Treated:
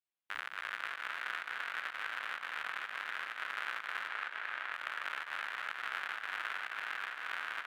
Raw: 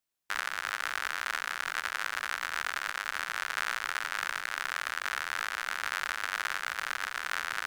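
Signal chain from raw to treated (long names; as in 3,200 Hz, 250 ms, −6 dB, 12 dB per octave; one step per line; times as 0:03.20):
0:04.08–0:04.73: bass and treble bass −5 dB, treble −9 dB
tape delay 263 ms, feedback 78%, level −4 dB, low-pass 5,800 Hz
fake sidechain pumping 126 BPM, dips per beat 1, −11 dB, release 110 ms
high-pass filter 160 Hz 6 dB per octave
high shelf with overshoot 4,100 Hz −8.5 dB, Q 1.5
level −8.5 dB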